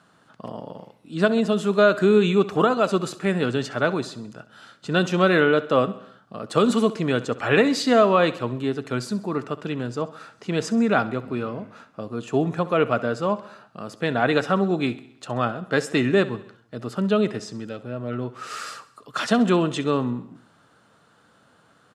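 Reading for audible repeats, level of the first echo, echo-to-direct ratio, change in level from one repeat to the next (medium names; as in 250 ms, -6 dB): 4, -17.0 dB, -15.5 dB, -5.0 dB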